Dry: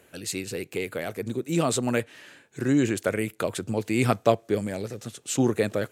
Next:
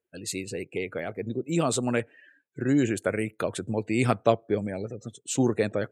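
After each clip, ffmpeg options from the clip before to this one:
-af "afftdn=nr=32:nf=-42,volume=0.891"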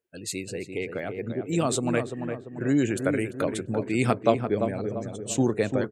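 -filter_complex "[0:a]asplit=2[s0][s1];[s1]adelay=343,lowpass=f=1300:p=1,volume=0.501,asplit=2[s2][s3];[s3]adelay=343,lowpass=f=1300:p=1,volume=0.49,asplit=2[s4][s5];[s5]adelay=343,lowpass=f=1300:p=1,volume=0.49,asplit=2[s6][s7];[s7]adelay=343,lowpass=f=1300:p=1,volume=0.49,asplit=2[s8][s9];[s9]adelay=343,lowpass=f=1300:p=1,volume=0.49,asplit=2[s10][s11];[s11]adelay=343,lowpass=f=1300:p=1,volume=0.49[s12];[s0][s2][s4][s6][s8][s10][s12]amix=inputs=7:normalize=0"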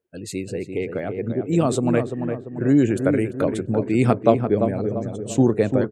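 -af "tiltshelf=f=1200:g=5,volume=1.26"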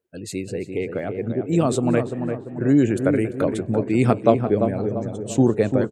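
-filter_complex "[0:a]asplit=5[s0][s1][s2][s3][s4];[s1]adelay=182,afreqshift=65,volume=0.0708[s5];[s2]adelay=364,afreqshift=130,volume=0.038[s6];[s3]adelay=546,afreqshift=195,volume=0.0207[s7];[s4]adelay=728,afreqshift=260,volume=0.0111[s8];[s0][s5][s6][s7][s8]amix=inputs=5:normalize=0"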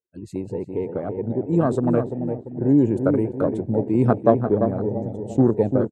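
-af "afwtdn=0.0501"

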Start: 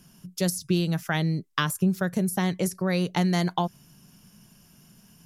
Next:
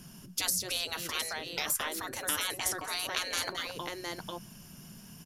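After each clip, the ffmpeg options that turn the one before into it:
-af "aecho=1:1:218|711:0.188|0.251,afftfilt=real='re*lt(hypot(re,im),0.0631)':imag='im*lt(hypot(re,im),0.0631)':win_size=1024:overlap=0.75,volume=1.68"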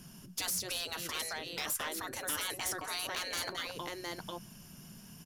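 -af "asoftclip=type=hard:threshold=0.0398,volume=0.794"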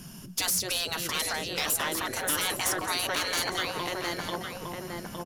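-filter_complex "[0:a]asplit=2[s0][s1];[s1]adelay=860,lowpass=f=1500:p=1,volume=0.708,asplit=2[s2][s3];[s3]adelay=860,lowpass=f=1500:p=1,volume=0.4,asplit=2[s4][s5];[s5]adelay=860,lowpass=f=1500:p=1,volume=0.4,asplit=2[s6][s7];[s7]adelay=860,lowpass=f=1500:p=1,volume=0.4,asplit=2[s8][s9];[s9]adelay=860,lowpass=f=1500:p=1,volume=0.4[s10];[s0][s2][s4][s6][s8][s10]amix=inputs=6:normalize=0,volume=2.37"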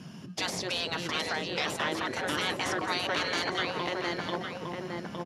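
-filter_complex "[0:a]asplit=2[s0][s1];[s1]acrusher=samples=31:mix=1:aa=0.000001,volume=0.282[s2];[s0][s2]amix=inputs=2:normalize=0,highpass=120,lowpass=4200"

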